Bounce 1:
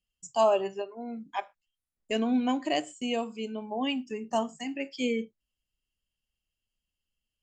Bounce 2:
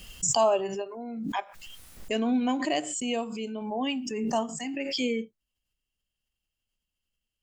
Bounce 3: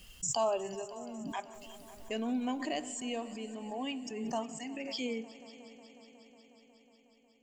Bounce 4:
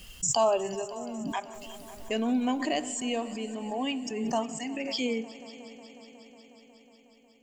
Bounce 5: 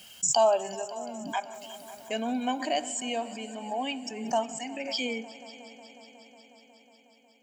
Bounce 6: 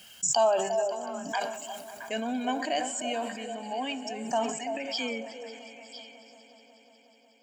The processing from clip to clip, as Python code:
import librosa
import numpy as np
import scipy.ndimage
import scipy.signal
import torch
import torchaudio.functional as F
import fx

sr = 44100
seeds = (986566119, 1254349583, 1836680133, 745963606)

y1 = fx.pre_swell(x, sr, db_per_s=36.0)
y2 = fx.echo_heads(y1, sr, ms=182, heads='all three', feedback_pct=68, wet_db=-22.0)
y2 = F.gain(torch.from_numpy(y2), -8.0).numpy()
y3 = fx.end_taper(y2, sr, db_per_s=430.0)
y3 = F.gain(torch.from_numpy(y3), 6.5).numpy()
y4 = scipy.signal.sosfilt(scipy.signal.butter(2, 260.0, 'highpass', fs=sr, output='sos'), y3)
y4 = y4 + 0.52 * np.pad(y4, (int(1.3 * sr / 1000.0), 0))[:len(y4)]
y5 = fx.peak_eq(y4, sr, hz=1600.0, db=5.5, octaves=0.37)
y5 = fx.echo_stepped(y5, sr, ms=335, hz=540.0, octaves=1.4, feedback_pct=70, wet_db=-5.0)
y5 = fx.sustainer(y5, sr, db_per_s=64.0)
y5 = F.gain(torch.from_numpy(y5), -1.5).numpy()